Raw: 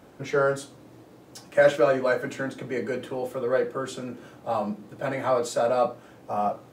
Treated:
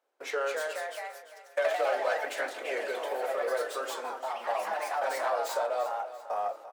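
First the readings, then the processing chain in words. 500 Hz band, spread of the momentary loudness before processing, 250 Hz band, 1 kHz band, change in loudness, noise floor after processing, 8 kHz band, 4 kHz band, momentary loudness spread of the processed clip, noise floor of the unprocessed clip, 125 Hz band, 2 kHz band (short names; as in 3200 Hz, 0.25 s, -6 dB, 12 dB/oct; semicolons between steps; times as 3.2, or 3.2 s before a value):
-6.5 dB, 13 LU, -18.5 dB, -1.5 dB, -6.0 dB, -53 dBFS, -2.0 dB, -0.5 dB, 8 LU, -51 dBFS, under -40 dB, -3.0 dB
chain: tracing distortion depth 0.076 ms; gate -39 dBFS, range -24 dB; HPF 470 Hz 24 dB/oct; compressor 2.5:1, threshold -31 dBFS, peak gain reduction 11.5 dB; echoes that change speed 0.245 s, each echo +2 st, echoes 3; feedback echo 0.343 s, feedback 41%, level -14 dB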